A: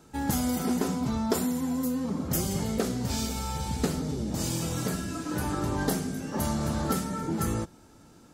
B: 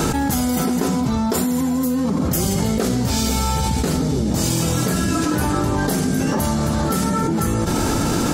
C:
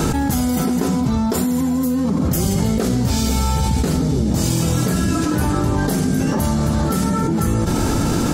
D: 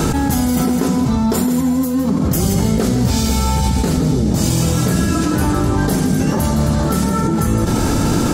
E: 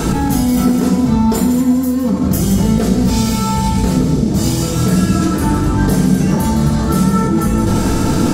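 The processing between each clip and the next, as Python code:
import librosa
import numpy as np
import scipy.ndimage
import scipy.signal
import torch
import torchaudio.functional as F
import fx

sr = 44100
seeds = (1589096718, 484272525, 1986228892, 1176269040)

y1 = fx.env_flatten(x, sr, amount_pct=100)
y1 = y1 * 10.0 ** (3.0 / 20.0)
y2 = fx.low_shelf(y1, sr, hz=250.0, db=5.5)
y2 = y2 * 10.0 ** (-1.5 / 20.0)
y3 = y2 + 10.0 ** (-10.0 / 20.0) * np.pad(y2, (int(162 * sr / 1000.0), 0))[:len(y2)]
y3 = y3 * 10.0 ** (2.0 / 20.0)
y4 = fx.room_shoebox(y3, sr, seeds[0], volume_m3=420.0, walls='furnished', distance_m=1.6)
y4 = y4 * 10.0 ** (-2.0 / 20.0)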